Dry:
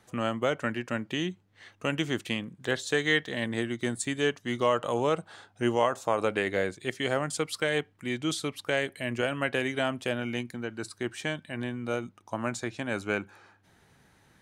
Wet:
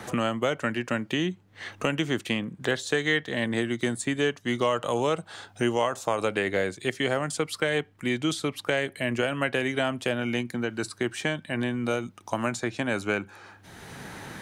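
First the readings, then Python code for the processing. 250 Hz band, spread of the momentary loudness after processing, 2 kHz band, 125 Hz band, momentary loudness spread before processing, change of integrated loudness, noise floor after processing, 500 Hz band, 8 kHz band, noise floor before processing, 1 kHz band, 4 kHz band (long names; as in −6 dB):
+3.5 dB, 6 LU, +2.5 dB, +3.0 dB, 8 LU, +2.5 dB, −55 dBFS, +2.0 dB, +2.0 dB, −63 dBFS, +1.5 dB, +2.5 dB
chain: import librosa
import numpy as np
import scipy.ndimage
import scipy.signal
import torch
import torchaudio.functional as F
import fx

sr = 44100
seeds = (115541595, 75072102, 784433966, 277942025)

y = fx.band_squash(x, sr, depth_pct=70)
y = y * librosa.db_to_amplitude(2.0)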